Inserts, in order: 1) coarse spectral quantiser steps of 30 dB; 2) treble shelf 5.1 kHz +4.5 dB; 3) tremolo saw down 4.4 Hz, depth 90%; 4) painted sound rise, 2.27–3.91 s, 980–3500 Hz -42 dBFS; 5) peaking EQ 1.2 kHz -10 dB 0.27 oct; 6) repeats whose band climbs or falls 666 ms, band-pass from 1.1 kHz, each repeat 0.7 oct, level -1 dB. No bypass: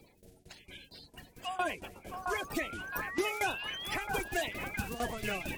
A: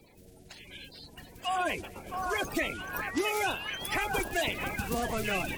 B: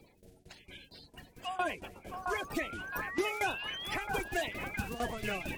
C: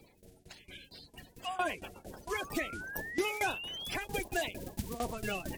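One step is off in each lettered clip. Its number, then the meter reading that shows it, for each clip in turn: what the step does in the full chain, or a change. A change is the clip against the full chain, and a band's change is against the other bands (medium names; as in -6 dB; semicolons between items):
3, crest factor change -2.5 dB; 2, 8 kHz band -3.0 dB; 6, echo-to-direct -2.5 dB to none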